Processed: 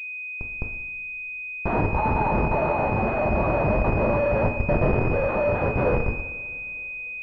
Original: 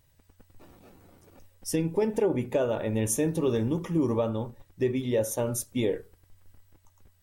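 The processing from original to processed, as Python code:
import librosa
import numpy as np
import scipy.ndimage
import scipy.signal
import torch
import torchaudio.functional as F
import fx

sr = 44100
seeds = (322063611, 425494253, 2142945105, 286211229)

p1 = x + 0.5 * 10.0 ** (-35.5 / 20.0) * np.sign(x)
p2 = fx.quant_dither(p1, sr, seeds[0], bits=6, dither='none')
p3 = p1 + F.gain(torch.from_numpy(p2), -3.0).numpy()
p4 = scipy.signal.sosfilt(scipy.signal.cheby2(4, 40, [200.0, 420.0], 'bandstop', fs=sr, output='sos'), p3)
p5 = p4 + fx.echo_multitap(p4, sr, ms=(56, 68, 495, 547), db=(-14.5, -18.5, -15.5, -20.0), dry=0)
p6 = fx.filter_sweep_highpass(p5, sr, from_hz=880.0, to_hz=380.0, start_s=2.58, end_s=5.48, q=4.3)
p7 = fx.low_shelf(p6, sr, hz=200.0, db=-7.5)
p8 = fx.schmitt(p7, sr, flips_db=-29.0)
p9 = fx.rider(p8, sr, range_db=10, speed_s=0.5)
p10 = fx.rev_double_slope(p9, sr, seeds[1], early_s=0.81, late_s=3.3, knee_db=-19, drr_db=3.0)
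p11 = fx.pwm(p10, sr, carrier_hz=2500.0)
y = F.gain(torch.from_numpy(p11), 6.0).numpy()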